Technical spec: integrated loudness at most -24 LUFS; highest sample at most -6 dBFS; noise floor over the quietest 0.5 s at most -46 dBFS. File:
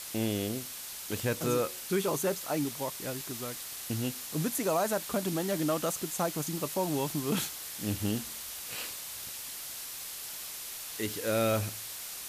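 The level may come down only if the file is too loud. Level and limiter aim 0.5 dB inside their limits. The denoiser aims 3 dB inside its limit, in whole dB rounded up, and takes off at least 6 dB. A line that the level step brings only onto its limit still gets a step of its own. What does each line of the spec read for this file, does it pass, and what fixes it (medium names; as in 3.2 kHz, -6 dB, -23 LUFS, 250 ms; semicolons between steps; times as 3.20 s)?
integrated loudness -33.0 LUFS: pass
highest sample -16.5 dBFS: pass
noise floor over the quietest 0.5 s -42 dBFS: fail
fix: noise reduction 7 dB, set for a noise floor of -42 dBFS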